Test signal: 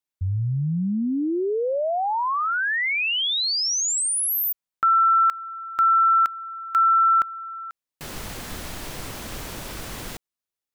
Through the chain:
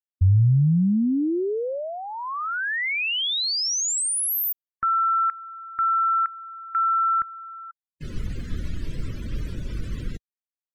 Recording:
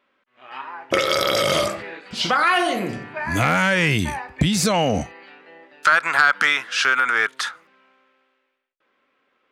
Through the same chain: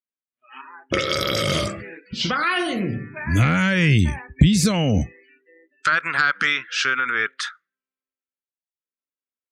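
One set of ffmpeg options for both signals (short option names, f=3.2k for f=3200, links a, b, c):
-af "equalizer=f=790:w=1.3:g=-9.5,afftdn=nr=36:nf=-39,lowshelf=f=180:g=12,volume=-1dB"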